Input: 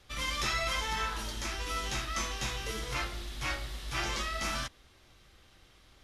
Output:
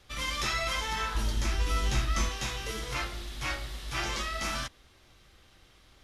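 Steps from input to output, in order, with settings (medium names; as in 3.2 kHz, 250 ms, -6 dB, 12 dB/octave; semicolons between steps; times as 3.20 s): 1.15–2.29 s: bass shelf 230 Hz +11 dB; trim +1 dB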